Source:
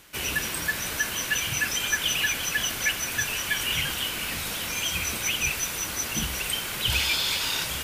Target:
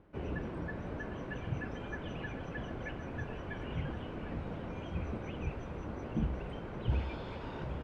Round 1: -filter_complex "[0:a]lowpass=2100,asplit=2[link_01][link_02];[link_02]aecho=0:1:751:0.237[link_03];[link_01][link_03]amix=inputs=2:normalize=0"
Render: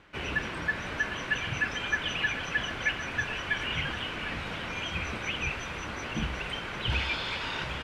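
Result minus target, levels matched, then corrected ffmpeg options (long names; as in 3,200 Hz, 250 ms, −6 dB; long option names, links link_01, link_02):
2,000 Hz band +8.5 dB
-filter_complex "[0:a]lowpass=600,asplit=2[link_01][link_02];[link_02]aecho=0:1:751:0.237[link_03];[link_01][link_03]amix=inputs=2:normalize=0"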